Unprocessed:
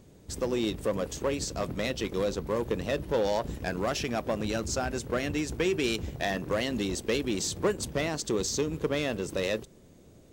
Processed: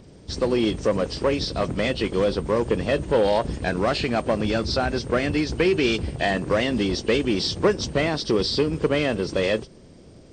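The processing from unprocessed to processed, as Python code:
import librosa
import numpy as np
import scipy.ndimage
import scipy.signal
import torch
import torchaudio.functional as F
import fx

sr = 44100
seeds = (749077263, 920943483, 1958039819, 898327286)

y = fx.freq_compress(x, sr, knee_hz=2600.0, ratio=1.5)
y = y * 10.0 ** (7.5 / 20.0)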